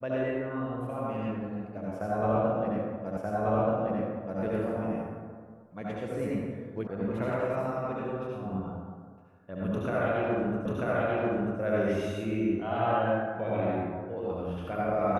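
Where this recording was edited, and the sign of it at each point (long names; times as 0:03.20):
0:03.17: the same again, the last 1.23 s
0:06.87: cut off before it has died away
0:10.66: the same again, the last 0.94 s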